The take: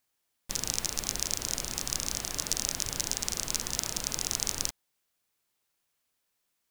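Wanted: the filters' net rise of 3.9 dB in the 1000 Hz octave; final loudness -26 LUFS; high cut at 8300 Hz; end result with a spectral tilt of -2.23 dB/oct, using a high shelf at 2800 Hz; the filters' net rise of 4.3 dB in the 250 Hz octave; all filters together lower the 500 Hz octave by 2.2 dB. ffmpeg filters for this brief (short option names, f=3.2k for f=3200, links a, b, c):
-af "lowpass=8.3k,equalizer=f=250:t=o:g=7,equalizer=f=500:t=o:g=-7,equalizer=f=1k:t=o:g=7.5,highshelf=f=2.8k:g=-7,volume=10.5dB"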